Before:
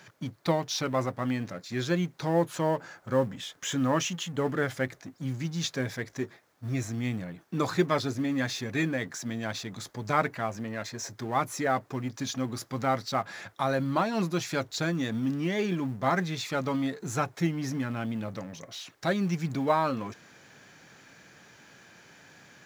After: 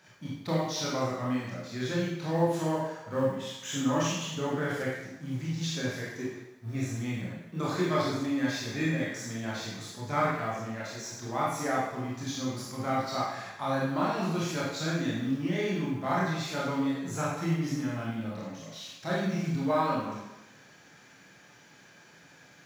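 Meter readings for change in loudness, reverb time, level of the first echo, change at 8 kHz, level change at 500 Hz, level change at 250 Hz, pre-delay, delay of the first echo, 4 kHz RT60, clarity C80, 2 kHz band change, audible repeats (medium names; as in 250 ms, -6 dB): -1.0 dB, 0.95 s, no echo, -1.5 dB, -1.5 dB, -0.5 dB, 22 ms, no echo, 0.85 s, 3.0 dB, -1.5 dB, no echo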